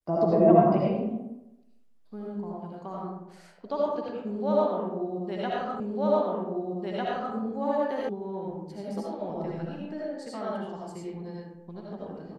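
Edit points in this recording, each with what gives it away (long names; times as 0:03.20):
0:05.80: the same again, the last 1.55 s
0:08.09: cut off before it has died away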